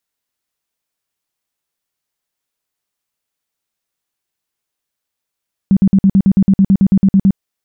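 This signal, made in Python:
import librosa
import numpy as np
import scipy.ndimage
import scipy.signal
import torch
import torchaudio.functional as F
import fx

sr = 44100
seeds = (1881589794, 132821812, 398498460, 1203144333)

y = fx.tone_burst(sr, hz=194.0, cycles=11, every_s=0.11, bursts=15, level_db=-5.5)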